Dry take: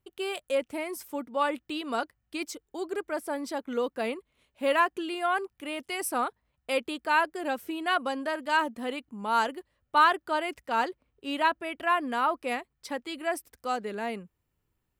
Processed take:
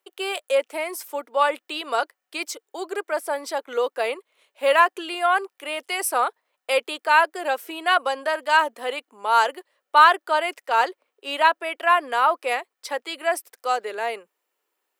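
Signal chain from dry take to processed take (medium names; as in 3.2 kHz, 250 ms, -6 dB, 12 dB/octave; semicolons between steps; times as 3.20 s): high-pass 430 Hz 24 dB/octave; trim +7.5 dB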